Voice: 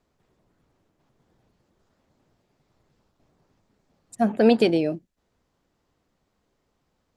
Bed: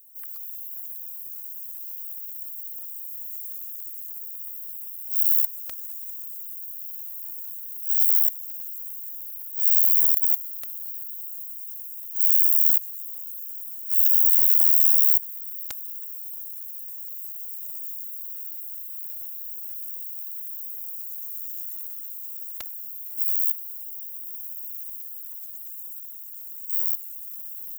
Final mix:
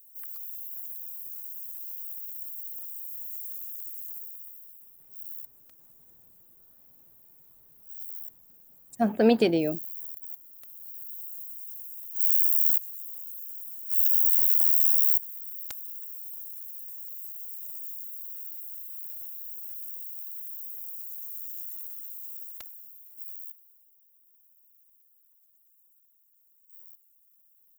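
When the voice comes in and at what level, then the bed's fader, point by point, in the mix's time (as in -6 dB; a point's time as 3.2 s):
4.80 s, -3.0 dB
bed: 4.14 s -2.5 dB
5.12 s -20.5 dB
10.23 s -20.5 dB
11.12 s -4 dB
22.36 s -4 dB
23.96 s -26 dB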